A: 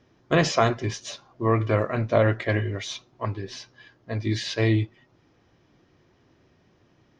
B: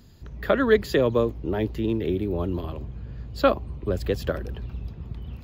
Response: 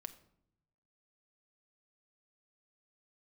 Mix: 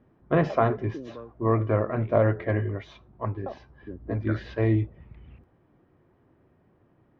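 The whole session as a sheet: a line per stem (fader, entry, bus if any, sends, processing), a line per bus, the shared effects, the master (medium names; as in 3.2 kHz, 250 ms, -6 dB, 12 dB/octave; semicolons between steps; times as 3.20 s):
-1.0 dB, 0.00 s, no send, low-pass 1.4 kHz 12 dB/octave
3.69 s -21 dB -> 4.16 s -12.5 dB, 0.00 s, no send, step-sequenced low-pass 2.6 Hz 220–2200 Hz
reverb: none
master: none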